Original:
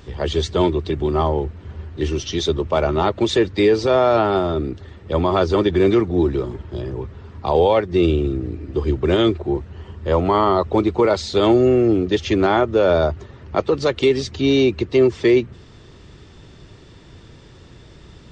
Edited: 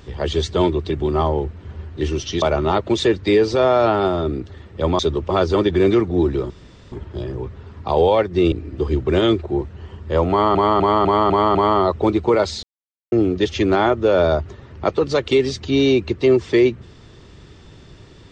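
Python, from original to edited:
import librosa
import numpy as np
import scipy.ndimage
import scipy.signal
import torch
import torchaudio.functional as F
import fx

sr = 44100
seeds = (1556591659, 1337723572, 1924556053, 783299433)

y = fx.edit(x, sr, fx.move(start_s=2.42, length_s=0.31, to_s=5.3),
    fx.insert_room_tone(at_s=6.5, length_s=0.42),
    fx.cut(start_s=8.1, length_s=0.38),
    fx.repeat(start_s=10.26, length_s=0.25, count=6),
    fx.silence(start_s=11.34, length_s=0.49), tone=tone)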